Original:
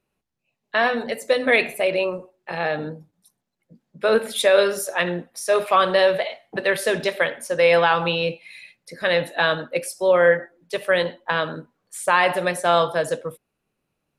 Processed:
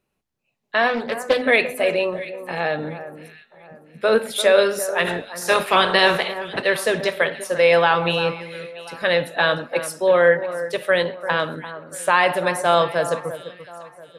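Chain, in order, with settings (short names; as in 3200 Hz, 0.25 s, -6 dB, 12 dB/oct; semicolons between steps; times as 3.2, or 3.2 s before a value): 5.05–6.61 spectral limiter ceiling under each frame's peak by 16 dB; echo with dull and thin repeats by turns 0.344 s, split 1700 Hz, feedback 56%, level -12 dB; 0.89–1.42 Doppler distortion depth 0.27 ms; gain +1 dB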